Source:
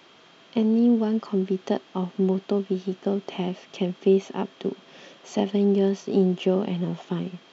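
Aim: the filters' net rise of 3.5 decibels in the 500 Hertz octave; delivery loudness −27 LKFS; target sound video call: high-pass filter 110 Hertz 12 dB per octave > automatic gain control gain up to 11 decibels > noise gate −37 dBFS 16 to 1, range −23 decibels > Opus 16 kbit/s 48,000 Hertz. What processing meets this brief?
high-pass filter 110 Hz 12 dB per octave
parametric band 500 Hz +5 dB
automatic gain control gain up to 11 dB
noise gate −37 dBFS 16 to 1, range −23 dB
level −3.5 dB
Opus 16 kbit/s 48,000 Hz

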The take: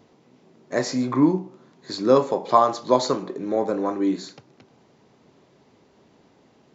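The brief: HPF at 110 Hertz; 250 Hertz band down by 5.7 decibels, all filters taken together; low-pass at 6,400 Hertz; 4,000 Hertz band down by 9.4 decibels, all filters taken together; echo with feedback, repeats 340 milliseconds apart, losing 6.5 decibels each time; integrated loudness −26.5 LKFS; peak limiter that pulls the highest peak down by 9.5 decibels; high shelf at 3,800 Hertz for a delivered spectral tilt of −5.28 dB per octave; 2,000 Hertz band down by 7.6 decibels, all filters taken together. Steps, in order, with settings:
high-pass filter 110 Hz
low-pass filter 6,400 Hz
parametric band 250 Hz −7 dB
parametric band 2,000 Hz −7 dB
high-shelf EQ 3,800 Hz −7 dB
parametric band 4,000 Hz −4 dB
brickwall limiter −14.5 dBFS
repeating echo 340 ms, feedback 47%, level −6.5 dB
level +1.5 dB

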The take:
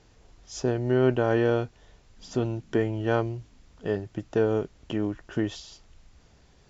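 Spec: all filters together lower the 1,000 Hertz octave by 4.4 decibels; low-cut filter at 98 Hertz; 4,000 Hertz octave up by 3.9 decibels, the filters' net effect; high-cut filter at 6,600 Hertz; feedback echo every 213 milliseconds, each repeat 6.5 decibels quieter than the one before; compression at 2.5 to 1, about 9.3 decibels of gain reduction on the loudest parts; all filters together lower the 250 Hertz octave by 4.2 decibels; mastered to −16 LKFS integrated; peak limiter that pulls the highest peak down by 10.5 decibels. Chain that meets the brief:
high-pass filter 98 Hz
low-pass filter 6,600 Hz
parametric band 250 Hz −5.5 dB
parametric band 1,000 Hz −6.5 dB
parametric band 4,000 Hz +6.5 dB
downward compressor 2.5 to 1, threshold −35 dBFS
brickwall limiter −31 dBFS
repeating echo 213 ms, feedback 47%, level −6.5 dB
level +26 dB

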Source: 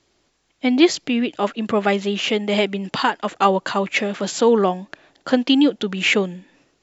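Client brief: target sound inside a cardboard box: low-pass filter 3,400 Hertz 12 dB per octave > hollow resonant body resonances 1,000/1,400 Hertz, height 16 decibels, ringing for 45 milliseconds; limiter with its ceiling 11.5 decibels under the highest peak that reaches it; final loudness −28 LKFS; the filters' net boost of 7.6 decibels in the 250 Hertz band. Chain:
parametric band 250 Hz +9 dB
brickwall limiter −10.5 dBFS
low-pass filter 3,400 Hz 12 dB per octave
hollow resonant body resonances 1,000/1,400 Hz, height 16 dB, ringing for 45 ms
level −9 dB

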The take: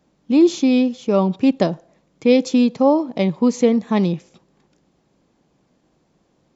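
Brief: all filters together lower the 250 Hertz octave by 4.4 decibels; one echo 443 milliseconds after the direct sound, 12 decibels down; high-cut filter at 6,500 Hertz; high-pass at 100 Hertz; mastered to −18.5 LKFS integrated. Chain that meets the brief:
high-pass filter 100 Hz
low-pass filter 6,500 Hz
parametric band 250 Hz −5 dB
single-tap delay 443 ms −12 dB
level +2 dB

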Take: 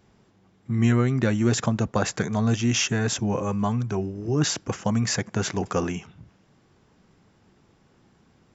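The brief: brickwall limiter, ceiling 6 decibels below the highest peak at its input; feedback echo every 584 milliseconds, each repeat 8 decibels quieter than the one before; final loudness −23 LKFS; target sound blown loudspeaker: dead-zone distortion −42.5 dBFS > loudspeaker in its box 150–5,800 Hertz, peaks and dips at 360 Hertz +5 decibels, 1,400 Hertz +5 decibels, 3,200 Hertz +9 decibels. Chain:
brickwall limiter −14.5 dBFS
repeating echo 584 ms, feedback 40%, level −8 dB
dead-zone distortion −42.5 dBFS
loudspeaker in its box 150–5,800 Hz, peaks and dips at 360 Hz +5 dB, 1,400 Hz +5 dB, 3,200 Hz +9 dB
level +3 dB

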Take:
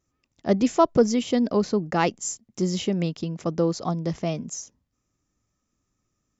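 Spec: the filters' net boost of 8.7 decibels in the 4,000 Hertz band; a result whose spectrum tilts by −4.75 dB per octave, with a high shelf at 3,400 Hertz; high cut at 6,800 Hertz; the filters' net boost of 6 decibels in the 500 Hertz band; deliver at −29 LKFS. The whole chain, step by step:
low-pass filter 6,800 Hz
parametric band 500 Hz +7 dB
high-shelf EQ 3,400 Hz +4.5 dB
parametric band 4,000 Hz +9 dB
level −8.5 dB

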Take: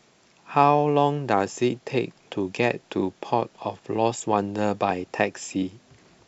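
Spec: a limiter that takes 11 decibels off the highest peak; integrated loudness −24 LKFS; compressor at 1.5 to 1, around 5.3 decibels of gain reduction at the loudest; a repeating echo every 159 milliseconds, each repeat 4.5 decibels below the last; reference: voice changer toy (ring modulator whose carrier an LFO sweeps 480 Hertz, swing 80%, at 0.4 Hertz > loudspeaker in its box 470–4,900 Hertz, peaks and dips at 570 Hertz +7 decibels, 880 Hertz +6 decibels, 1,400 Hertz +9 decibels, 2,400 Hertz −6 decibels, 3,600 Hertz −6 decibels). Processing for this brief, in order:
downward compressor 1.5 to 1, threshold −26 dBFS
brickwall limiter −19 dBFS
repeating echo 159 ms, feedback 60%, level −4.5 dB
ring modulator whose carrier an LFO sweeps 480 Hz, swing 80%, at 0.4 Hz
loudspeaker in its box 470–4,900 Hz, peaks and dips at 570 Hz +7 dB, 880 Hz +6 dB, 1,400 Hz +9 dB, 2,400 Hz −6 dB, 3,600 Hz −6 dB
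level +6.5 dB

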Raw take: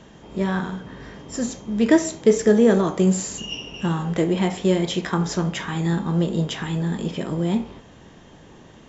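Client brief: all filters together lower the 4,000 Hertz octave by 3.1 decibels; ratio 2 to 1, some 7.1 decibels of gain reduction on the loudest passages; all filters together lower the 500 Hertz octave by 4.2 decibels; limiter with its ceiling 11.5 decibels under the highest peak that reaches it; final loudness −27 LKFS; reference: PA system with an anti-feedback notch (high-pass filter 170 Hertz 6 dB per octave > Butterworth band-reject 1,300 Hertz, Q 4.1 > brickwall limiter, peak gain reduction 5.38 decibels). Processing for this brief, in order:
parametric band 500 Hz −4.5 dB
parametric band 4,000 Hz −4.5 dB
downward compressor 2 to 1, threshold −26 dBFS
brickwall limiter −25 dBFS
high-pass filter 170 Hz 6 dB per octave
Butterworth band-reject 1,300 Hz, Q 4.1
level +10 dB
brickwall limiter −18 dBFS

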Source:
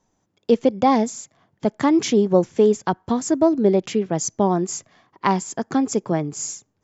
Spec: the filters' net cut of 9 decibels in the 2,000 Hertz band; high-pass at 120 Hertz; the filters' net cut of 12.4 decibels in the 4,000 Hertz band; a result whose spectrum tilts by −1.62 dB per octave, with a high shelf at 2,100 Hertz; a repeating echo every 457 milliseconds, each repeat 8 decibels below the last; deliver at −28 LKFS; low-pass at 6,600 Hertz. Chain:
high-pass filter 120 Hz
low-pass filter 6,600 Hz
parametric band 2,000 Hz −6 dB
high-shelf EQ 2,100 Hz −7 dB
parametric band 4,000 Hz −7 dB
repeating echo 457 ms, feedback 40%, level −8 dB
level −7 dB

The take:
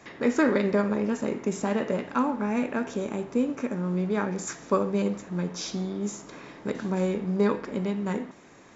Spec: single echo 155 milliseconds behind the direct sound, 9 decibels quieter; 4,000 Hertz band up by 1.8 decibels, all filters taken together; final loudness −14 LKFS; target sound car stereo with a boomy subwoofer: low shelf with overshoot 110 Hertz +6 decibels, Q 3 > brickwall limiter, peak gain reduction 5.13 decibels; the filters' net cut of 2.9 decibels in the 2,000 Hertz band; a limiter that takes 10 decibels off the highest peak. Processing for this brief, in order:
parametric band 2,000 Hz −4.5 dB
parametric band 4,000 Hz +3.5 dB
brickwall limiter −21 dBFS
low shelf with overshoot 110 Hz +6 dB, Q 3
single-tap delay 155 ms −9 dB
level +19.5 dB
brickwall limiter −5 dBFS

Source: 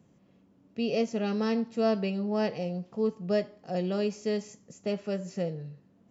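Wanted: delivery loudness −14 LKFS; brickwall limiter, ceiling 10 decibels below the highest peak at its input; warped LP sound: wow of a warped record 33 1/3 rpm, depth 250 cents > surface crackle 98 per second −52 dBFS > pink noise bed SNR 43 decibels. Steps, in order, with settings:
brickwall limiter −26.5 dBFS
wow of a warped record 33 1/3 rpm, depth 250 cents
surface crackle 98 per second −52 dBFS
pink noise bed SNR 43 dB
level +21 dB

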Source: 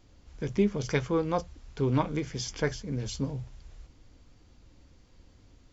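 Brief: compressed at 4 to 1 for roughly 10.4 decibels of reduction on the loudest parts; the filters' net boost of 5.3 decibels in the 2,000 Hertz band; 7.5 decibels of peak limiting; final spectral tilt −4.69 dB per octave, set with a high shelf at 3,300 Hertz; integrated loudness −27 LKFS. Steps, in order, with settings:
parametric band 2,000 Hz +5 dB
high-shelf EQ 3,300 Hz +5 dB
downward compressor 4 to 1, threshold −32 dBFS
level +11.5 dB
brickwall limiter −16 dBFS

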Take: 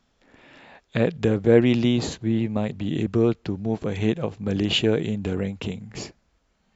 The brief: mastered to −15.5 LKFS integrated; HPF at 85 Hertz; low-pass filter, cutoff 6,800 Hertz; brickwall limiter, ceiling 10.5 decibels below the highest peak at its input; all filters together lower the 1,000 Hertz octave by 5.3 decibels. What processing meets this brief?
high-pass filter 85 Hz
low-pass filter 6,800 Hz
parametric band 1,000 Hz −8 dB
level +11 dB
brickwall limiter −3.5 dBFS

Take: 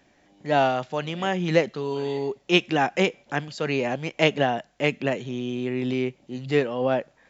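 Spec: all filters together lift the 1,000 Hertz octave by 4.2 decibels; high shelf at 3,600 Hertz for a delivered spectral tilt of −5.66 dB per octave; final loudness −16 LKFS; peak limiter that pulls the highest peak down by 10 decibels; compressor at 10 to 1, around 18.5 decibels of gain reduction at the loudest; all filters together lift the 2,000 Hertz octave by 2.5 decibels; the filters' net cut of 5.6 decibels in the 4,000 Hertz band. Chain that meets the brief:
parametric band 1,000 Hz +6 dB
parametric band 2,000 Hz +6.5 dB
high-shelf EQ 3,600 Hz −9 dB
parametric band 4,000 Hz −8 dB
downward compressor 10 to 1, threshold −32 dBFS
level +23 dB
brickwall limiter −5 dBFS

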